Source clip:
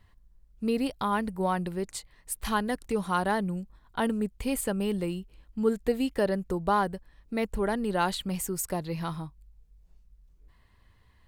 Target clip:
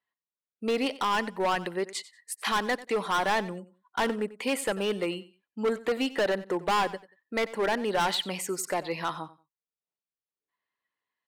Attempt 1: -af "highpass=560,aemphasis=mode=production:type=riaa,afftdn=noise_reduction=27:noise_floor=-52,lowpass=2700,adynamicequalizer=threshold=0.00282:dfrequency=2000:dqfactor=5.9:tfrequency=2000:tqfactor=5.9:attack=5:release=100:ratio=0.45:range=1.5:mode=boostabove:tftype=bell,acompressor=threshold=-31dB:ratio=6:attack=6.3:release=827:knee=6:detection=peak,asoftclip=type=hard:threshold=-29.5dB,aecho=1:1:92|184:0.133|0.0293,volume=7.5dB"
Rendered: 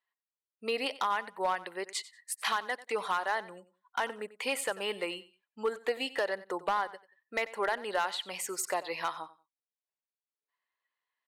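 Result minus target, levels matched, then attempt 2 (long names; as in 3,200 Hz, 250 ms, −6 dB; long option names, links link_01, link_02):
downward compressor: peak gain reduction +11.5 dB; 250 Hz band −8.0 dB
-af "highpass=240,aemphasis=mode=production:type=riaa,afftdn=noise_reduction=27:noise_floor=-52,lowpass=2700,adynamicequalizer=threshold=0.00282:dfrequency=2000:dqfactor=5.9:tfrequency=2000:tqfactor=5.9:attack=5:release=100:ratio=0.45:range=1.5:mode=boostabove:tftype=bell,asoftclip=type=hard:threshold=-29.5dB,aecho=1:1:92|184:0.133|0.0293,volume=7.5dB"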